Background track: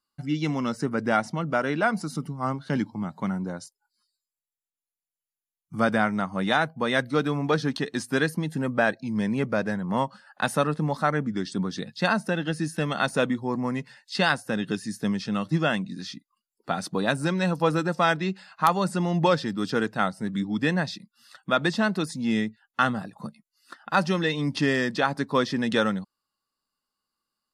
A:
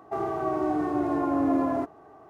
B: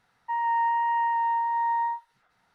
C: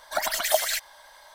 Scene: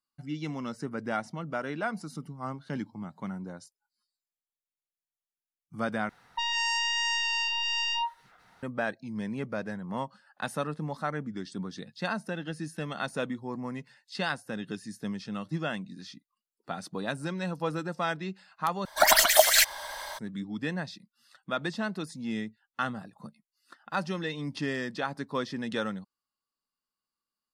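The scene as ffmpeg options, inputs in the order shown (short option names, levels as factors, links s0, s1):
-filter_complex "[0:a]volume=0.376[s0];[2:a]aeval=exprs='0.106*sin(PI/2*3.55*val(0)/0.106)':c=same[s1];[3:a]dynaudnorm=f=110:g=3:m=4.73[s2];[s0]asplit=3[s3][s4][s5];[s3]atrim=end=6.094[s6];[s1]atrim=end=2.54,asetpts=PTS-STARTPTS,volume=0.473[s7];[s4]atrim=start=8.626:end=18.854[s8];[s2]atrim=end=1.34,asetpts=PTS-STARTPTS,volume=0.841[s9];[s5]atrim=start=20.186[s10];[s6][s7]acrossfade=d=0.004:c1=hsin:c2=hsin[s11];[s11][s8]acrossfade=d=0.004:c1=hsin:c2=hsin[s12];[s12][s9]acrossfade=d=0.004:c1=hsin:c2=hsin[s13];[s13][s10]acrossfade=d=0.004:c1=hsin:c2=hsin"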